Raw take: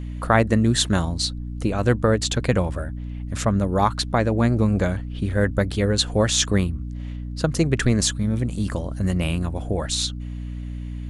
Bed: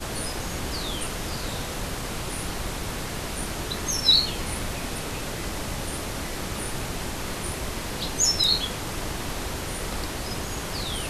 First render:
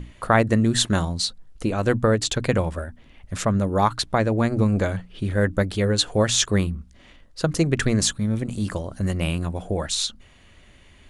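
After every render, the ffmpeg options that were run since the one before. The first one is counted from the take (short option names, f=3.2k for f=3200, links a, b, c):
-af "bandreject=f=60:t=h:w=6,bandreject=f=120:t=h:w=6,bandreject=f=180:t=h:w=6,bandreject=f=240:t=h:w=6,bandreject=f=300:t=h:w=6"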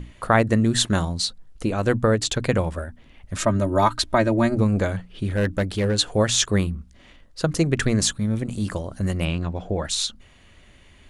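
-filter_complex "[0:a]asettb=1/sr,asplit=3[a][b][c];[a]atrim=end=3.374[d];[b]atrim=start=3.37:end=4.55,asetpts=PTS-STARTPTS,afade=t=in:d=0.004:c=qsin,afade=t=out:st=1.176:d=0.004:c=qsin,aecho=1:1:3.2:0.8,atrim=end_sample=52038[e];[c]atrim=start=4.546[f];[d][e]acrossfade=d=0.004:c1=hsin:c2=qsin[g];[g][f]acrossfade=d=0.004:c1=qsin:c2=hsin,asettb=1/sr,asplit=3[h][i][j];[h]atrim=end=5.284[k];[i]atrim=start=5.28:end=5.98,asetpts=PTS-STARTPTS,afade=t=in:d=0.004:c=qsin,afade=t=out:st=0.696:d=0.004:c=qsin,volume=16.5dB,asoftclip=hard,volume=-16.5dB[l];[j]atrim=start=5.976[m];[k][l]acrossfade=d=0.004:c1=hsin:c2=qsin[n];[n][m]acrossfade=d=0.004:c1=qsin:c2=hsin,asettb=1/sr,asplit=3[o][p][q];[o]atrim=end=9.254[r];[p]atrim=start=9.25:end=9.85,asetpts=PTS-STARTPTS,afade=t=in:d=0.004:c=qsin,afade=t=out:st=0.596:d=0.004:c=qsin,lowpass=f=5.9k:w=0.5412,lowpass=f=5.9k:w=1.3066[s];[q]atrim=start=9.846[t];[r][s]acrossfade=d=0.004:c1=hsin:c2=qsin[u];[u][t]acrossfade=d=0.004:c1=qsin:c2=hsin"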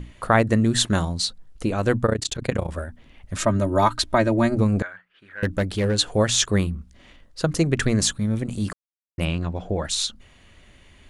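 -filter_complex "[0:a]asettb=1/sr,asplit=3[a][b][c];[a]atrim=end=2.064[d];[b]atrim=start=2.06:end=2.7,asetpts=PTS-STARTPTS,afade=t=in:d=0.004:c=qsin,afade=t=out:st=0.636:d=0.004:c=qsin,tremolo=f=30:d=0.919[e];[c]atrim=start=2.696[f];[d][e]acrossfade=d=0.004:c1=hsin:c2=qsin[g];[g][f]acrossfade=d=0.004:c1=qsin:c2=hsin,asettb=1/sr,asplit=3[h][i][j];[h]atrim=end=4.824[k];[i]atrim=start=4.82:end=5.43,asetpts=PTS-STARTPTS,afade=t=in:d=0.004:c=qsin,afade=t=out:st=0.606:d=0.004:c=qsin,bandpass=f=1.6k:t=q:w=3.3[l];[j]atrim=start=5.426[m];[k][l]acrossfade=d=0.004:c1=hsin:c2=qsin[n];[n][m]acrossfade=d=0.004:c1=qsin:c2=hsin,asplit=3[o][p][q];[o]atrim=end=8.73,asetpts=PTS-STARTPTS,afade=t=out:st=8.726:d=0.004:c=hsin[r];[p]atrim=start=8.73:end=9.18,asetpts=PTS-STARTPTS,volume=0[s];[q]atrim=start=9.18,asetpts=PTS-STARTPTS,afade=t=in:d=0.004:c=hsin[t];[r][s][t]concat=n=3:v=0:a=1"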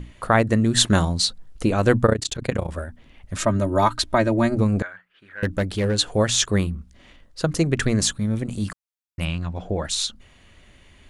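-filter_complex "[0:a]asettb=1/sr,asplit=3[a][b][c];[a]atrim=end=8.644[d];[b]atrim=start=8.64:end=9.57,asetpts=PTS-STARTPTS,afade=t=in:d=0.004:c=qsin,afade=t=out:st=0.926:d=0.004:c=qsin,equalizer=f=410:w=1.1:g=-9.5[e];[c]atrim=start=9.566[f];[d][e]acrossfade=d=0.004:c1=hsin:c2=qsin[g];[g][f]acrossfade=d=0.004:c1=qsin:c2=hsin,asplit=3[h][i][j];[h]atrim=end=0.772[k];[i]atrim=start=0.768:end=2.132,asetpts=PTS-STARTPTS,volume=3.5dB[l];[j]atrim=start=2.128[m];[k][l]acrossfade=d=0.004:c1=hsin:c2=hsin[n];[n][m]acrossfade=d=0.004:c1=hsin:c2=hsin"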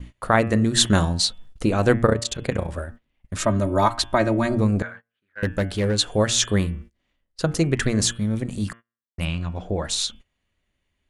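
-af "bandreject=f=115.8:t=h:w=4,bandreject=f=231.6:t=h:w=4,bandreject=f=347.4:t=h:w=4,bandreject=f=463.2:t=h:w=4,bandreject=f=579:t=h:w=4,bandreject=f=694.8:t=h:w=4,bandreject=f=810.6:t=h:w=4,bandreject=f=926.4:t=h:w=4,bandreject=f=1.0422k:t=h:w=4,bandreject=f=1.158k:t=h:w=4,bandreject=f=1.2738k:t=h:w=4,bandreject=f=1.3896k:t=h:w=4,bandreject=f=1.5054k:t=h:w=4,bandreject=f=1.6212k:t=h:w=4,bandreject=f=1.737k:t=h:w=4,bandreject=f=1.8528k:t=h:w=4,bandreject=f=1.9686k:t=h:w=4,bandreject=f=2.0844k:t=h:w=4,bandreject=f=2.2002k:t=h:w=4,bandreject=f=2.316k:t=h:w=4,bandreject=f=2.4318k:t=h:w=4,bandreject=f=2.5476k:t=h:w=4,bandreject=f=2.6634k:t=h:w=4,bandreject=f=2.7792k:t=h:w=4,bandreject=f=2.895k:t=h:w=4,bandreject=f=3.0108k:t=h:w=4,bandreject=f=3.1266k:t=h:w=4,bandreject=f=3.2424k:t=h:w=4,bandreject=f=3.3582k:t=h:w=4,bandreject=f=3.474k:t=h:w=4,agate=range=-23dB:threshold=-39dB:ratio=16:detection=peak"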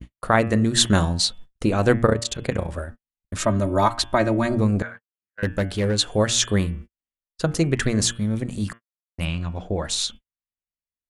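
-af "agate=range=-30dB:threshold=-36dB:ratio=16:detection=peak"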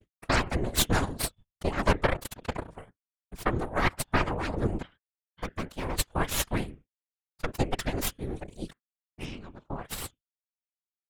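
-af "aeval=exprs='0.794*(cos(1*acos(clip(val(0)/0.794,-1,1)))-cos(1*PI/2))+0.126*(cos(3*acos(clip(val(0)/0.794,-1,1)))-cos(3*PI/2))+0.0141*(cos(5*acos(clip(val(0)/0.794,-1,1)))-cos(5*PI/2))+0.2*(cos(6*acos(clip(val(0)/0.794,-1,1)))-cos(6*PI/2))+0.0631*(cos(7*acos(clip(val(0)/0.794,-1,1)))-cos(7*PI/2))':c=same,afftfilt=real='hypot(re,im)*cos(2*PI*random(0))':imag='hypot(re,im)*sin(2*PI*random(1))':win_size=512:overlap=0.75"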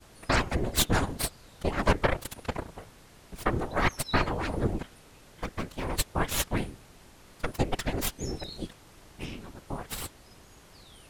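-filter_complex "[1:a]volume=-22.5dB[a];[0:a][a]amix=inputs=2:normalize=0"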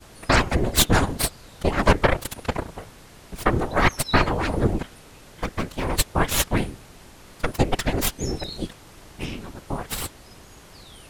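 -af "volume=7dB,alimiter=limit=-3dB:level=0:latency=1"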